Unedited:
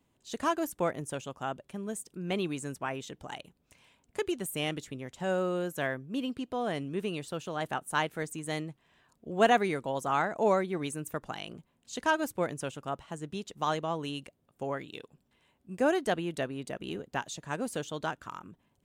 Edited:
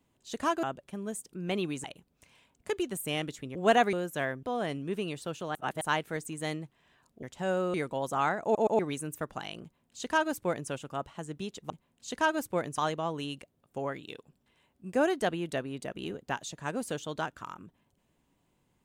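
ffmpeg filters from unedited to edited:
-filter_complex "[0:a]asplit=15[a][b][c][d][e][f][g][h][i][j][k][l][m][n][o];[a]atrim=end=0.632[p];[b]atrim=start=1.438:end=2.652[q];[c]atrim=start=3.328:end=5.042[r];[d]atrim=start=9.288:end=9.672[s];[e]atrim=start=5.548:end=6.052[t];[f]atrim=start=6.488:end=7.612[u];[g]atrim=start=7.608:end=7.872,asetpts=PTS-STARTPTS,areverse[v];[h]atrim=start=7.868:end=9.292[w];[i]atrim=start=5.038:end=5.552[x];[j]atrim=start=9.668:end=10.482[y];[k]atrim=start=10.358:end=10.482[z];[l]atrim=start=10.358:end=10.482[aa];[m]atrim=start=10.718:end=13.632[ab];[n]atrim=start=11.548:end=12.632[ac];[o]atrim=start=13.628[ad];[p][q]acrossfade=d=0.004:c1=hsin:c2=hsin[ae];[ae][r]acrossfade=d=0.004:c1=hsin:c2=hsin[af];[af][s]acrossfade=d=0.004:c1=hsin:c2=hsin[ag];[ag][t]acrossfade=d=0.004:c1=hsin:c2=hsin[ah];[ah][u]acrossfade=d=0.004:c1=hsin:c2=hsin[ai];[ai][v]acrossfade=d=0.004:c1=hsin:c2=hsin[aj];[aj][w]acrossfade=d=0.004:c1=hsin:c2=hsin[ak];[ak][x]acrossfade=d=0.004:c1=hsin:c2=hsin[al];[al][y]acrossfade=d=0.004:c1=hsin:c2=hsin[am];[am][z]acrossfade=d=0.004:c1=hsin:c2=hsin[an];[an][aa]acrossfade=d=0.004:c1=hsin:c2=hsin[ao];[ao][ab]acrossfade=d=0.004:c1=hsin:c2=hsin[ap];[ap][ac]acrossfade=d=0.004:c1=hsin:c2=hsin[aq];[aq][ad]acrossfade=d=0.004:c1=hsin:c2=hsin"

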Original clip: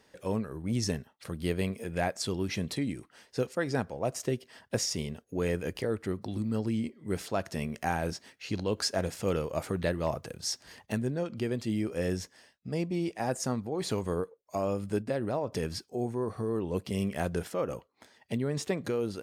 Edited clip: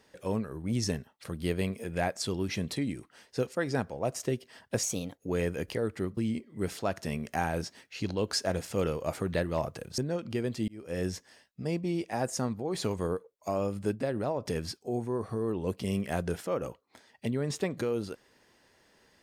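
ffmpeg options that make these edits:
-filter_complex "[0:a]asplit=6[a][b][c][d][e][f];[a]atrim=end=4.834[g];[b]atrim=start=4.83:end=5.25,asetpts=PTS-STARTPTS,asetrate=52920,aresample=44100[h];[c]atrim=start=5.246:end=6.242[i];[d]atrim=start=6.658:end=10.472[j];[e]atrim=start=11.048:end=11.75,asetpts=PTS-STARTPTS,afade=t=out:st=0.698:d=0.004:c=hsin[k];[f]atrim=start=11.75,asetpts=PTS-STARTPTS,afade=t=in:d=0.39[l];[g][h]acrossfade=d=0.004:c1=hsin:c2=hsin[m];[m][i]acrossfade=d=0.004:c1=hsin:c2=hsin[n];[n][j]acrossfade=d=0.004:c1=hsin:c2=hsin[o];[k][l]concat=n=2:v=0:a=1[p];[o][p]acrossfade=d=0.004:c1=hsin:c2=hsin"

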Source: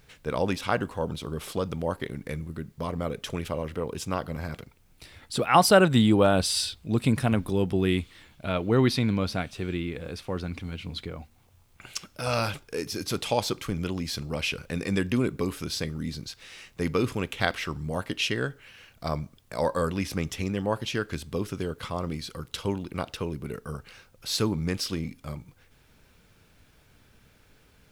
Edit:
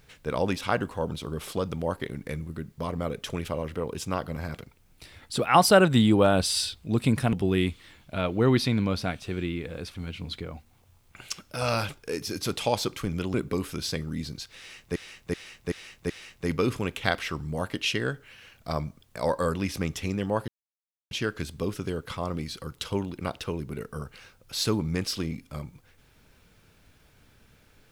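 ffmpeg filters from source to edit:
-filter_complex "[0:a]asplit=9[a][b][c][d][e][f][g][h][i];[a]atrim=end=7.332[j];[b]atrim=start=7.638:end=10.262[k];[c]atrim=start=10.598:end=13.992[l];[d]atrim=start=15.218:end=16.842[m];[e]atrim=start=16.458:end=16.842[n];[f]atrim=start=16.458:end=16.842[o];[g]atrim=start=16.458:end=16.842[p];[h]atrim=start=16.458:end=20.84,asetpts=PTS-STARTPTS,afade=t=out:st=4.378:d=0.004:c=hsin,apad=pad_dur=0.63[q];[i]atrim=start=20.84,asetpts=PTS-STARTPTS,afade=t=in:d=0.004:c=hsin[r];[j][k]acrossfade=d=0.004:c1=hsin:c2=hsin[s];[s][l]acrossfade=d=0.004:c1=hsin:c2=hsin[t];[t][m]acrossfade=d=0.004:c1=hsin:c2=hsin[u];[u][n]acrossfade=d=0.004:c1=hsin:c2=hsin[v];[v][o]acrossfade=d=0.004:c1=hsin:c2=hsin[w];[w][p]acrossfade=d=0.004:c1=hsin:c2=hsin[x];[q][r]concat=n=2:v=0:a=1[y];[x][y]acrossfade=d=0.004:c1=hsin:c2=hsin"

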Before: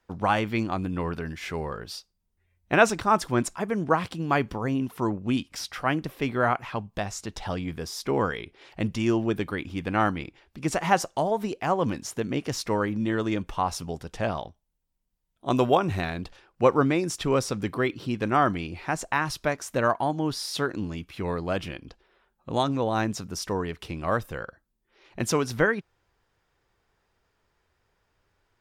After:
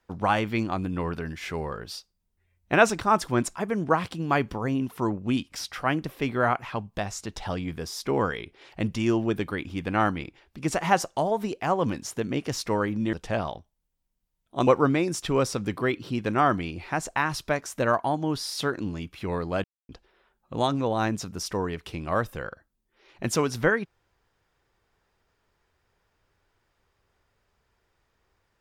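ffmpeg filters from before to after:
-filter_complex "[0:a]asplit=5[a][b][c][d][e];[a]atrim=end=13.132[f];[b]atrim=start=14.028:end=15.572[g];[c]atrim=start=16.628:end=21.6,asetpts=PTS-STARTPTS,afade=t=out:st=4.968:d=0.004:c=hsin[h];[d]atrim=start=21.6:end=21.85,asetpts=PTS-STARTPTS,volume=0[i];[e]atrim=start=21.85,asetpts=PTS-STARTPTS,afade=t=in:d=0.004:c=hsin[j];[f][g]acrossfade=d=0.004:c1=hsin:c2=hsin[k];[h][i][j]concat=n=3:v=0:a=1[l];[k][l]acrossfade=d=0.004:c1=hsin:c2=hsin"

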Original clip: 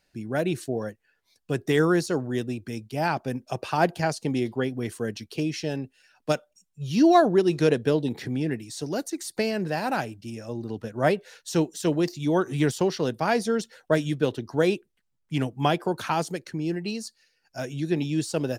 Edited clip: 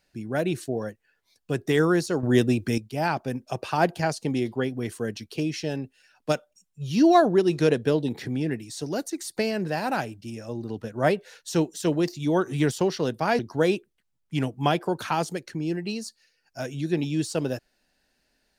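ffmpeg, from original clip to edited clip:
-filter_complex "[0:a]asplit=4[a][b][c][d];[a]atrim=end=2.232[e];[b]atrim=start=2.228:end=2.782,asetpts=PTS-STARTPTS,volume=8.5dB[f];[c]atrim=start=2.778:end=13.392[g];[d]atrim=start=14.378[h];[e][f]acrossfade=d=0.004:c1=hsin:c2=hsin[i];[i][g]acrossfade=d=0.004:c1=hsin:c2=hsin[j];[j][h]acrossfade=d=0.004:c1=hsin:c2=hsin"

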